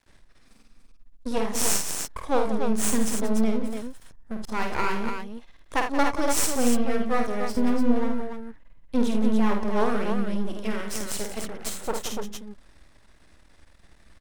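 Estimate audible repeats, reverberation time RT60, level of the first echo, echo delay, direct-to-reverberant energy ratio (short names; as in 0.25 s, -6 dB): 3, none, -5.5 dB, 50 ms, none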